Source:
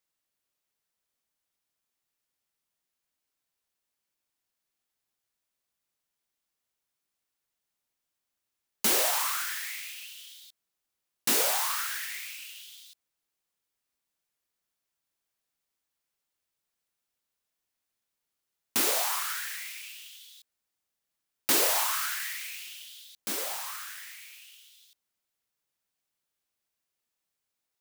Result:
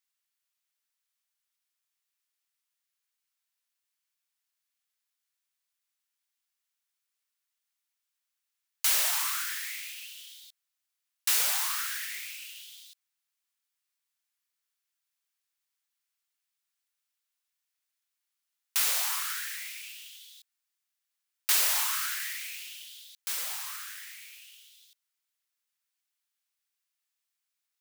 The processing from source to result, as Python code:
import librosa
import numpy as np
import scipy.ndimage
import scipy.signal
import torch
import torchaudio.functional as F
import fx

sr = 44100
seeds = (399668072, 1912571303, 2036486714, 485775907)

y = scipy.signal.sosfilt(scipy.signal.butter(2, 1300.0, 'highpass', fs=sr, output='sos'), x)